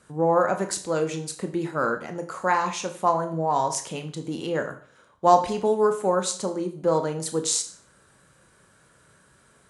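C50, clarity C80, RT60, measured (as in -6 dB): 11.5 dB, 16.0 dB, 0.45 s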